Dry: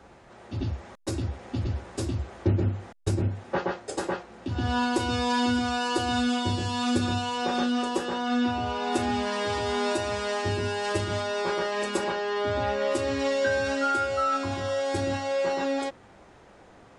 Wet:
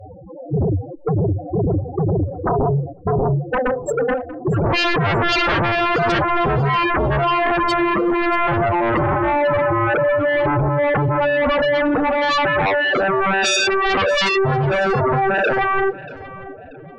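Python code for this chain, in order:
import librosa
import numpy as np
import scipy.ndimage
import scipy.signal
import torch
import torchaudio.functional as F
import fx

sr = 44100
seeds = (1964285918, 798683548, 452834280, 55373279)

p1 = fx.pitch_keep_formants(x, sr, semitones=6.0)
p2 = fx.spec_topn(p1, sr, count=4)
p3 = fx.fold_sine(p2, sr, drive_db=17, ceiling_db=-14.5)
y = p3 + fx.echo_feedback(p3, sr, ms=635, feedback_pct=30, wet_db=-18.0, dry=0)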